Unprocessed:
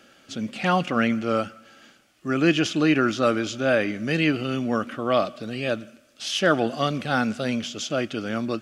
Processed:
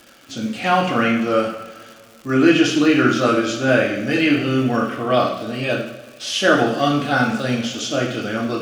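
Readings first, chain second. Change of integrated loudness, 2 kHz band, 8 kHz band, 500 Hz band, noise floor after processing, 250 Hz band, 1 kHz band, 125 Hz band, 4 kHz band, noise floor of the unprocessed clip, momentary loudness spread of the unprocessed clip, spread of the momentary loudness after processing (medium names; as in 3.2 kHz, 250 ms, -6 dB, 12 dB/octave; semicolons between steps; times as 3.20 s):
+5.5 dB, +6.0 dB, +5.5 dB, +5.0 dB, -46 dBFS, +6.0 dB, +6.0 dB, +4.5 dB, +5.5 dB, -57 dBFS, 9 LU, 11 LU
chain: two-slope reverb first 0.63 s, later 2.4 s, from -17 dB, DRR -2.5 dB; crackle 240 per s -35 dBFS; trim +1 dB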